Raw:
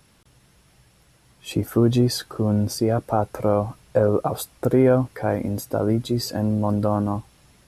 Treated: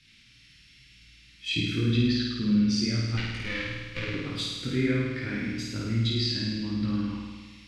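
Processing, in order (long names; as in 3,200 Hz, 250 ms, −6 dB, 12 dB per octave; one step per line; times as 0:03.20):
0:03.17–0:04.14: lower of the sound and its delayed copy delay 2.1 ms
drawn EQ curve 290 Hz 0 dB, 710 Hz −27 dB, 2,200 Hz +14 dB, 4,400 Hz +13 dB, 12,000 Hz −11 dB
treble cut that deepens with the level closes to 2,300 Hz, closed at −14 dBFS
multi-voice chorus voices 2, 0.95 Hz, delay 21 ms, depth 4.5 ms
on a send: flutter between parallel walls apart 9 metres, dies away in 1.4 s
on the sum: level −4.5 dB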